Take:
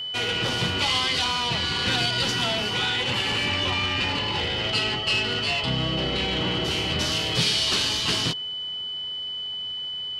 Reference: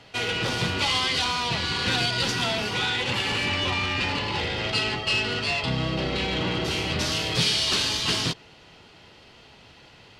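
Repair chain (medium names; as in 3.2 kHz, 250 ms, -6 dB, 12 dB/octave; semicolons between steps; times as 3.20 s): de-click; band-stop 3 kHz, Q 30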